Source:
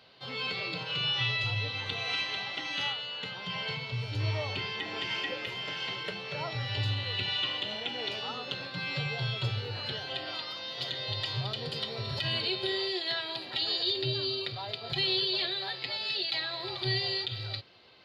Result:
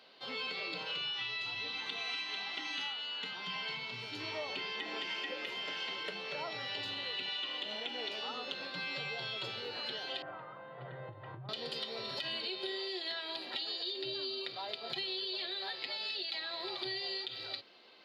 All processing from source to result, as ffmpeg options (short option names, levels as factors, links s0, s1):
-filter_complex "[0:a]asettb=1/sr,asplit=3[s0][s1][s2];[s0]atrim=end=1.014[s3];[s1]atrim=start=1.01:end=4.32,asetpts=PTS-STARTPTS,afade=t=in:d=0.004:c=qsin,afade=t=out:st=3.306:d=0.004:c=qsin,equalizer=f=540:w=4:g=-11,asplit=2[s4][s5];[s5]adelay=26,volume=0.2[s6];[s4][s6]amix=inputs=2:normalize=0,atrim=end_sample=145971[s7];[s2]atrim=start=4.316[s8];[s3][s7]acrossfade=d=0.004:c1=hsin:c2=qsin[s9];[s9][s8]acrossfade=d=0.004:c1=qsin:c2=hsin,asettb=1/sr,asplit=3[s10][s11][s12];[s10]atrim=end=10.224[s13];[s11]atrim=start=10.22:end=11.49,asetpts=PTS-STARTPTS,afade=t=in:d=0.004:c=qsin,afade=t=out:st=1.266:d=0.004:c=qsin,lowpass=f=1500:w=0.5412,lowpass=f=1500:w=1.3066,lowshelf=f=180:t=q:w=3:g=11.5,acompressor=threshold=0.0501:ratio=10:attack=3.2:release=140:knee=1:detection=peak[s14];[s12]atrim=start=11.486[s15];[s13][s14]acrossfade=d=0.004:c1=hsin:c2=qsin[s16];[s16][s15]acrossfade=d=0.004:c1=qsin:c2=hsin,highpass=f=210:w=0.5412,highpass=f=210:w=1.3066,acompressor=threshold=0.02:ratio=6,volume=0.841"